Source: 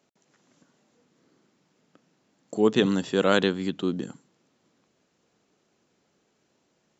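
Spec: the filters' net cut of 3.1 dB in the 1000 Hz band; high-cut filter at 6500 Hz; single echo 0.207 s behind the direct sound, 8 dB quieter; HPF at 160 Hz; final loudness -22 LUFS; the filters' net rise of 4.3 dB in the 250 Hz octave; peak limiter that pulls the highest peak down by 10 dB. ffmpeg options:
-af "highpass=160,lowpass=6.5k,equalizer=f=250:t=o:g=7,equalizer=f=1k:t=o:g=-5,alimiter=limit=-16dB:level=0:latency=1,aecho=1:1:207:0.398,volume=5dB"

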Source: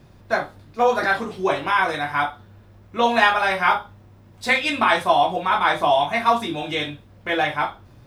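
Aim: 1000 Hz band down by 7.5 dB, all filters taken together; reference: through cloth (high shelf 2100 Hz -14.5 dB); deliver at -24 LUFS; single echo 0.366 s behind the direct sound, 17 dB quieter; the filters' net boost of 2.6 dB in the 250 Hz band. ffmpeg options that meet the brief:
-af "equalizer=f=250:t=o:g=4,equalizer=f=1k:t=o:g=-7.5,highshelf=f=2.1k:g=-14.5,aecho=1:1:366:0.141,volume=2dB"

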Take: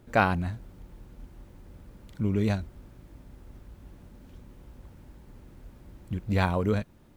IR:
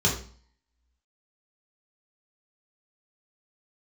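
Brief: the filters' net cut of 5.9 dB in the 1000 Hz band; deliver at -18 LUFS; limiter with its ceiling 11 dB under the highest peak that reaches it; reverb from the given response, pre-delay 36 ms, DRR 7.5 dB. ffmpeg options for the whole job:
-filter_complex "[0:a]equalizer=f=1k:t=o:g=-8.5,alimiter=limit=-23dB:level=0:latency=1,asplit=2[a][b];[1:a]atrim=start_sample=2205,adelay=36[c];[b][c]afir=irnorm=-1:irlink=0,volume=-20dB[d];[a][d]amix=inputs=2:normalize=0,volume=11dB"

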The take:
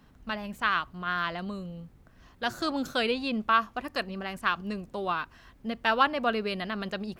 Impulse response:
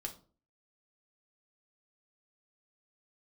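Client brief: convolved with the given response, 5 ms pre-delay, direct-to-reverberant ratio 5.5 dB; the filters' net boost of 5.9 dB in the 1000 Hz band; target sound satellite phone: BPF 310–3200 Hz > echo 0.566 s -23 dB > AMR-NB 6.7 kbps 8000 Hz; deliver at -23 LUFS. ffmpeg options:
-filter_complex "[0:a]equalizer=f=1k:t=o:g=7.5,asplit=2[a][b];[1:a]atrim=start_sample=2205,adelay=5[c];[b][c]afir=irnorm=-1:irlink=0,volume=-4dB[d];[a][d]amix=inputs=2:normalize=0,highpass=310,lowpass=3.2k,aecho=1:1:566:0.0708,volume=3.5dB" -ar 8000 -c:a libopencore_amrnb -b:a 6700

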